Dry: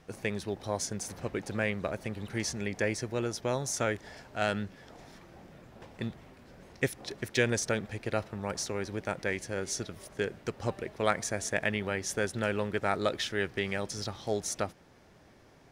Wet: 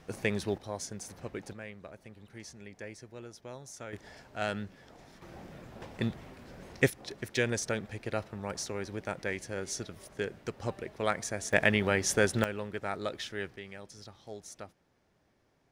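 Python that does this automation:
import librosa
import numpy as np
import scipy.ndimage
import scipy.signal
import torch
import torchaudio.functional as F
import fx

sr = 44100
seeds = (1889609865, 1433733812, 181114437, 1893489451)

y = fx.gain(x, sr, db=fx.steps((0.0, 2.5), (0.58, -5.5), (1.53, -14.0), (3.93, -3.5), (5.22, 4.0), (6.9, -2.5), (11.53, 5.0), (12.44, -6.0), (13.56, -13.0)))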